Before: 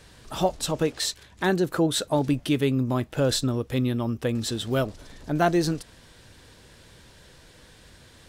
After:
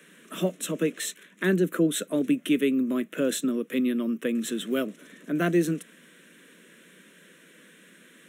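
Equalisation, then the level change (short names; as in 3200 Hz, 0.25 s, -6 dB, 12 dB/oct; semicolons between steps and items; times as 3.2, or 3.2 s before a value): steep high-pass 170 Hz 72 dB/oct; dynamic EQ 1300 Hz, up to -4 dB, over -38 dBFS, Q 1.1; fixed phaser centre 2000 Hz, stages 4; +3.0 dB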